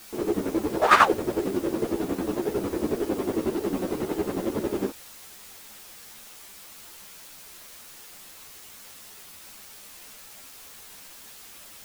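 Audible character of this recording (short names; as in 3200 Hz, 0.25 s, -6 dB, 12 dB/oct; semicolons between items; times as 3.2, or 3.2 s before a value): chopped level 11 Hz, depth 65%, duty 40%; a quantiser's noise floor 8-bit, dither triangular; a shimmering, thickened sound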